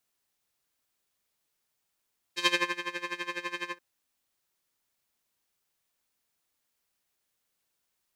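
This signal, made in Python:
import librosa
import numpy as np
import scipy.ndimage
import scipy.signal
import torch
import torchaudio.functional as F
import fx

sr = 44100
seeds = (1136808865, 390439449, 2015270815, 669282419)

y = fx.sub_patch_tremolo(sr, seeds[0], note=65, wave='square', wave2='saw', interval_st=7, detune_cents=10, level2_db=-1.5, sub_db=-8, noise_db=-30.0, kind='bandpass', cutoff_hz=1400.0, q=1.3, env_oct=1.5, env_decay_s=0.27, env_sustain_pct=40, attack_ms=73.0, decay_s=0.32, sustain_db=-13.0, release_s=0.1, note_s=1.33, lfo_hz=12.0, tremolo_db=17.5)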